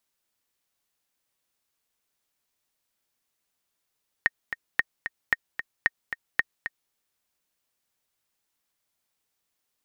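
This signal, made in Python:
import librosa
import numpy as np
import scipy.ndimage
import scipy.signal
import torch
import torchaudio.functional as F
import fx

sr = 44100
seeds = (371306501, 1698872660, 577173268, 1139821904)

y = fx.click_track(sr, bpm=225, beats=2, bars=5, hz=1850.0, accent_db=10.0, level_db=-7.0)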